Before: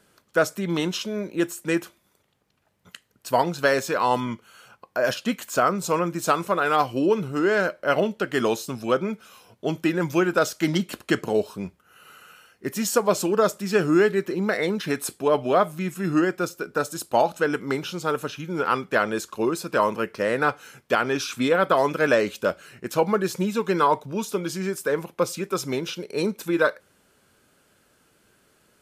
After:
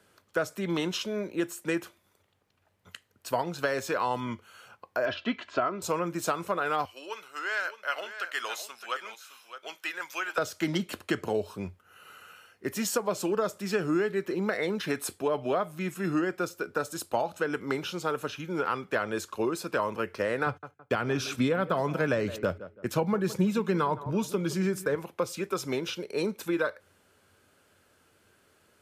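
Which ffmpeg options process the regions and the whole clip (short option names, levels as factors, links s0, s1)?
-filter_complex "[0:a]asettb=1/sr,asplit=3[s0][s1][s2];[s0]atrim=end=5.054[s3];[s1]atrim=start=5.05:end=5.82,asetpts=PTS-STARTPTS,afade=t=in:d=0.004:c=qsin,afade=t=out:st=0.766:d=0.004:c=qsin,lowpass=f=3900:w=0.5412,lowpass=f=3900:w=1.3066,aecho=1:1:3:0.58,atrim=end_sample=33957[s4];[s2]atrim=start=5.816[s5];[s3][s4]acrossfade=d=0.004:c1=hsin:c2=qsin[s6];[s6][s5]acrossfade=d=0.004:c1=qsin:c2=hsin,asettb=1/sr,asplit=3[s7][s8][s9];[s7]atrim=end=6.854[s10];[s8]atrim=start=6.85:end=10.38,asetpts=PTS-STARTPTS,afade=t=in:d=0.004:c=qsin,afade=t=out:st=3.526:d=0.004:c=qsin,highpass=1300,aecho=1:1:614:0.251,atrim=end_sample=155673[s11];[s9]atrim=start=10.376[s12];[s10][s11]acrossfade=d=0.004:c1=hsin:c2=qsin[s13];[s13][s12]acrossfade=d=0.004:c1=qsin:c2=hsin,asettb=1/sr,asplit=3[s14][s15][s16];[s14]atrim=end=20.464[s17];[s15]atrim=start=20.46:end=24.95,asetpts=PTS-STARTPTS,afade=t=in:d=0.004:c=qsin,afade=t=out:st=4.486:d=0.004:c=qsin,agate=range=0.0141:threshold=0.00794:ratio=16:release=100:detection=peak,equalizer=f=140:w=0.8:g=9.5,asplit=2[s18][s19];[s19]adelay=165,lowpass=f=1900:p=1,volume=0.126,asplit=2[s20][s21];[s21]adelay=165,lowpass=f=1900:p=1,volume=0.3,asplit=2[s22][s23];[s23]adelay=165,lowpass=f=1900:p=1,volume=0.3[s24];[s18][s20][s22][s24]amix=inputs=4:normalize=0,atrim=end_sample=198009[s25];[s16]atrim=start=24.946[s26];[s17][s25]acrossfade=d=0.004:c1=hsin:c2=qsin[s27];[s27][s26]acrossfade=d=0.004:c1=qsin:c2=hsin,bass=f=250:g=-6,treble=f=4000:g=-3,acrossover=split=170[s28][s29];[s29]acompressor=threshold=0.0631:ratio=4[s30];[s28][s30]amix=inputs=2:normalize=0,equalizer=f=91:t=o:w=0.4:g=13,volume=0.841"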